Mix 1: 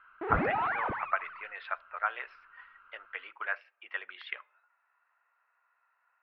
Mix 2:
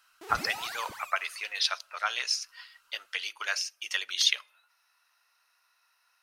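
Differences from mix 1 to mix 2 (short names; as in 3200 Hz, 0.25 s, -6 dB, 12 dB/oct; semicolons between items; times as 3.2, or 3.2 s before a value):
background -11.0 dB; master: remove inverse Chebyshev low-pass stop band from 6100 Hz, stop band 60 dB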